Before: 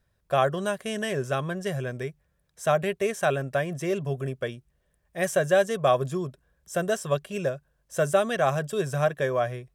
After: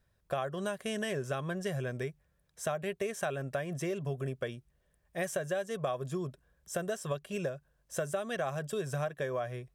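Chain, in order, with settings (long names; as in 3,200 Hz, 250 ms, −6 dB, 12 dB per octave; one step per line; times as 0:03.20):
downward compressor 6 to 1, threshold −29 dBFS, peak gain reduction 12.5 dB
level −2 dB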